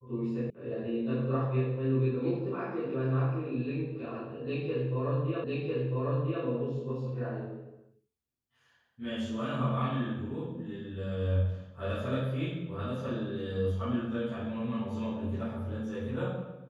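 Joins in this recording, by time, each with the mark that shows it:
0.50 s: sound stops dead
5.44 s: repeat of the last 1 s

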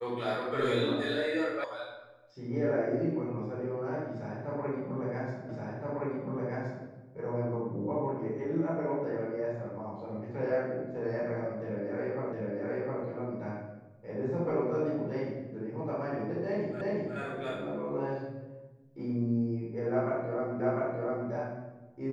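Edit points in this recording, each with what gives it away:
1.64 s: sound stops dead
5.49 s: repeat of the last 1.37 s
12.33 s: repeat of the last 0.71 s
16.81 s: repeat of the last 0.36 s
20.60 s: repeat of the last 0.7 s

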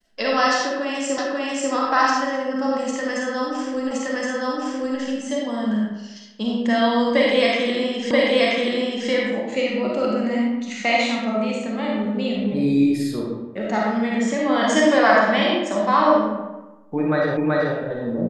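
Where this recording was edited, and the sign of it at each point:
1.18 s: repeat of the last 0.54 s
3.91 s: repeat of the last 1.07 s
8.11 s: repeat of the last 0.98 s
17.37 s: repeat of the last 0.38 s

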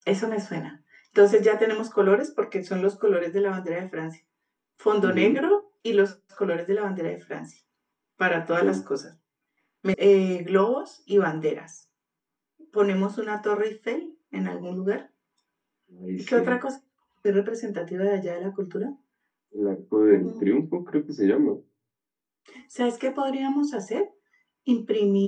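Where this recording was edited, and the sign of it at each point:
9.94 s: sound stops dead

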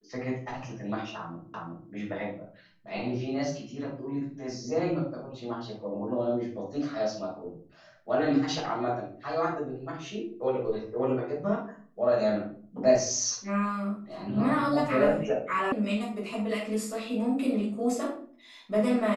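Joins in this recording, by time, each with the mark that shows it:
1.54 s: repeat of the last 0.37 s
15.72 s: sound stops dead

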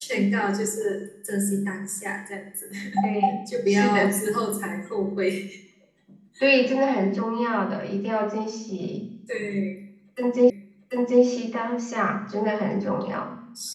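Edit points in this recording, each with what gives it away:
10.50 s: repeat of the last 0.74 s

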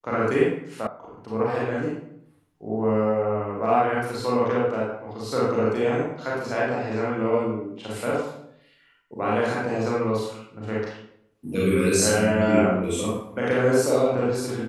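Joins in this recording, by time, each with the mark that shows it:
0.87 s: sound stops dead

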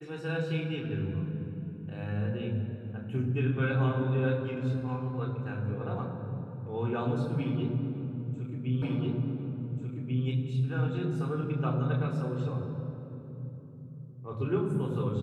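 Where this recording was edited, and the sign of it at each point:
8.82 s: repeat of the last 1.44 s

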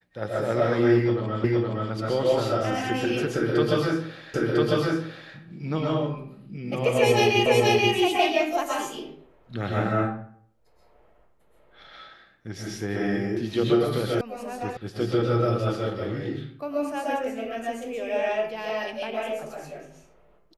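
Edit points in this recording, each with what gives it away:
1.44 s: repeat of the last 0.47 s
4.34 s: repeat of the last 1 s
7.46 s: repeat of the last 0.48 s
14.21 s: sound stops dead
14.77 s: sound stops dead

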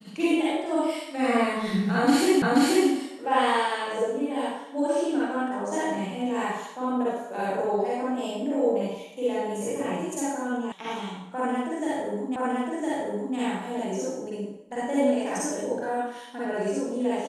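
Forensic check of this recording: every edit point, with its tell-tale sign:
2.42 s: repeat of the last 0.48 s
10.72 s: sound stops dead
12.36 s: repeat of the last 1.01 s

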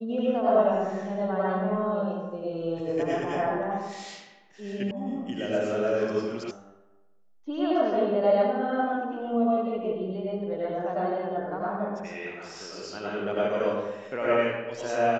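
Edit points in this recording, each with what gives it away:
4.91 s: sound stops dead
6.51 s: sound stops dead

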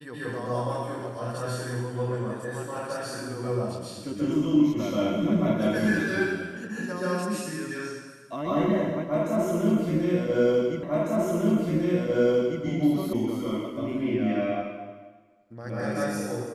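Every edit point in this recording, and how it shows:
10.83 s: repeat of the last 1.8 s
13.13 s: sound stops dead

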